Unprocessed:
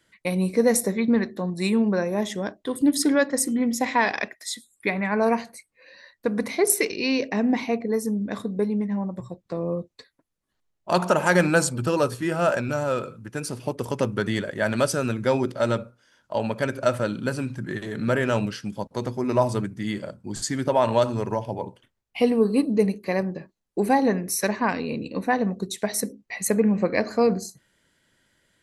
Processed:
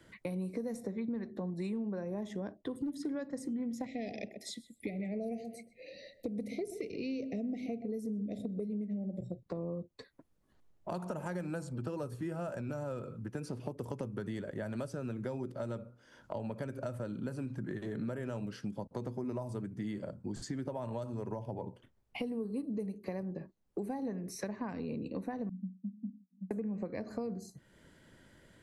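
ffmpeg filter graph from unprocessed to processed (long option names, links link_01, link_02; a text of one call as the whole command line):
ffmpeg -i in.wav -filter_complex "[0:a]asettb=1/sr,asplit=3[link_01][link_02][link_03];[link_01]atrim=end=1.324[link_04];[link_02]atrim=start=1.32:end=3.05,asetpts=PTS-STARTPTS,afade=type=in:duration=0.004:curve=qsin,afade=type=out:start_time=1.726:duration=0.004:curve=qsin,highshelf=frequency=8800:gain=-12,volume=14dB,asoftclip=hard,volume=-14dB[link_05];[link_03]atrim=start=3.046[link_06];[link_04][link_05]acrossfade=duration=0.004:curve1=hsin:curve2=qsin[link_07];[link_07][link_06]acrossfade=duration=0.004:curve1=qsin:curve2=hsin,asettb=1/sr,asplit=3[link_08][link_09][link_10];[link_08]atrim=end=3.864[link_11];[link_09]atrim=start=3.86:end=9.43,asetpts=PTS-STARTPTS,afade=type=in:duration=0.004:curve=qsin,afade=type=out:start_time=5.566:duration=0.004:curve=qsin,asuperstop=centerf=1200:order=12:qfactor=0.91,asplit=2[link_12][link_13];[link_13]adelay=128,lowpass=frequency=940:poles=1,volume=-12dB,asplit=2[link_14][link_15];[link_15]adelay=128,lowpass=frequency=940:poles=1,volume=0.18[link_16];[link_12][link_14][link_16]amix=inputs=3:normalize=0,atrim=end_sample=245637[link_17];[link_10]atrim=start=9.426[link_18];[link_11][link_17]acrossfade=duration=0.004:curve1=hsin:curve2=qsin[link_19];[link_19][link_18]acrossfade=duration=0.004:curve1=qsin:curve2=hsin,asettb=1/sr,asplit=3[link_20][link_21][link_22];[link_20]atrim=end=25.494[link_23];[link_21]atrim=start=25.49:end=26.51,asetpts=PTS-STARTPTS,afade=type=in:duration=0.004:curve=qsin,afade=type=out:start_time=1.016:duration=0.004:curve=qsin,asuperpass=centerf=210:order=8:qfactor=3.5,aecho=1:1:7:0.56,atrim=end_sample=44982[link_24];[link_22]atrim=start=26.506[link_25];[link_23][link_24]acrossfade=duration=0.004:curve1=hsin:curve2=qsin[link_26];[link_26][link_25]acrossfade=duration=0.004:curve1=qsin:curve2=hsin,acrossover=split=190|6900[link_27][link_28][link_29];[link_27]acompressor=threshold=-39dB:ratio=4[link_30];[link_28]acompressor=threshold=-32dB:ratio=4[link_31];[link_29]acompressor=threshold=-46dB:ratio=4[link_32];[link_30][link_31][link_32]amix=inputs=3:normalize=0,tiltshelf=frequency=1200:gain=6,acompressor=threshold=-53dB:ratio=2,volume=4.5dB" out.wav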